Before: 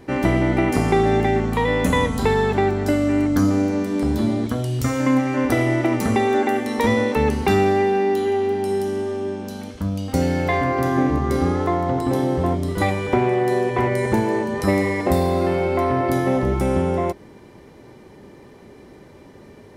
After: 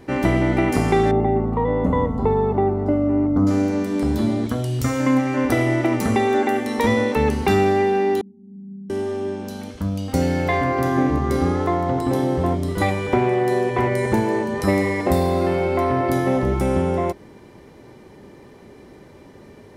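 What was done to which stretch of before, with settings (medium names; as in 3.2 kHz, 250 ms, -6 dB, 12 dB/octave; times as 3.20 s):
1.11–3.47 s: Savitzky-Golay filter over 65 samples
8.21–8.90 s: Butterworth band-pass 180 Hz, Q 4.5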